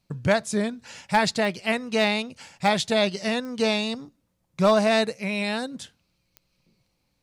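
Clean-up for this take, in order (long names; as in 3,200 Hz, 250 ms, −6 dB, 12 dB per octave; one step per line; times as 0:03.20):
clipped peaks rebuilt −11.5 dBFS
click removal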